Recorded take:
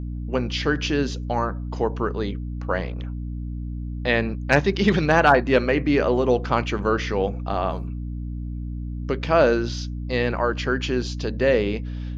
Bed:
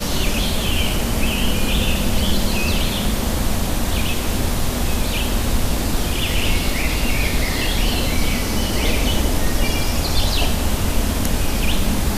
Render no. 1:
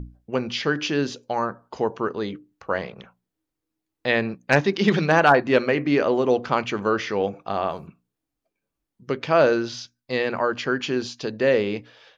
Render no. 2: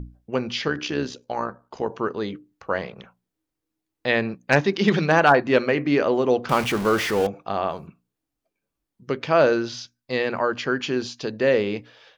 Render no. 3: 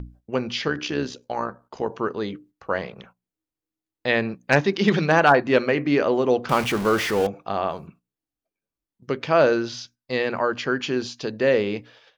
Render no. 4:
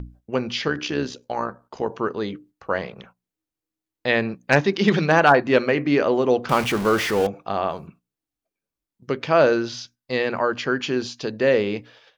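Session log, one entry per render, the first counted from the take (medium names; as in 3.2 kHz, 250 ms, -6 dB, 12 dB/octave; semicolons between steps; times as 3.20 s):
hum notches 60/120/180/240/300 Hz
0.68–1.90 s: AM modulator 66 Hz, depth 45%; 6.49–7.27 s: jump at every zero crossing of -25.5 dBFS
gate -50 dBFS, range -8 dB
trim +1 dB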